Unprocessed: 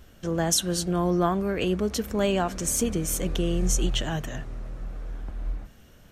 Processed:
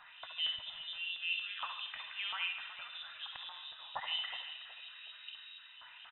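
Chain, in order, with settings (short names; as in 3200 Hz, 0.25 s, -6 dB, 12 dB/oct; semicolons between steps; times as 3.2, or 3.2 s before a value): 1.88–2.46 bell 1500 Hz +11 dB 0.55 oct; compressor 5:1, threshold -40 dBFS, peak gain reduction 19 dB; fixed phaser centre 2300 Hz, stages 8; LFO band-pass saw down 4.3 Hz 700–2900 Hz; air absorption 180 m; frequency-shifting echo 0.369 s, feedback 31%, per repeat +56 Hz, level -13 dB; reverb RT60 0.75 s, pre-delay 48 ms, DRR 4 dB; inverted band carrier 3800 Hz; gain +17 dB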